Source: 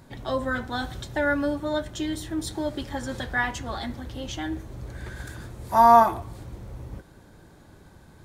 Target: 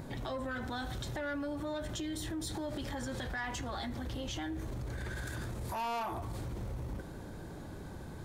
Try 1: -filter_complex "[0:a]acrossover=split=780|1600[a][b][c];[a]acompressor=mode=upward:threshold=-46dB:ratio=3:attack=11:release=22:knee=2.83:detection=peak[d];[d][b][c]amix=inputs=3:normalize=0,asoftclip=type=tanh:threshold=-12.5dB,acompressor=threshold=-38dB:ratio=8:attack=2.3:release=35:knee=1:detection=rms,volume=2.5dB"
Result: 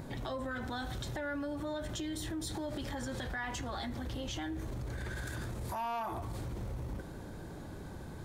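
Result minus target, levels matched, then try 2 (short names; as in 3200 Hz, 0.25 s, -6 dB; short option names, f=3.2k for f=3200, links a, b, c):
soft clip: distortion -6 dB
-filter_complex "[0:a]acrossover=split=780|1600[a][b][c];[a]acompressor=mode=upward:threshold=-46dB:ratio=3:attack=11:release=22:knee=2.83:detection=peak[d];[d][b][c]amix=inputs=3:normalize=0,asoftclip=type=tanh:threshold=-19.5dB,acompressor=threshold=-38dB:ratio=8:attack=2.3:release=35:knee=1:detection=rms,volume=2.5dB"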